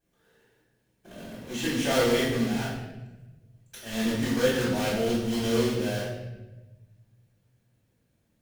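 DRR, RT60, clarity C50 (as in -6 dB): -11.5 dB, 1.1 s, 0.5 dB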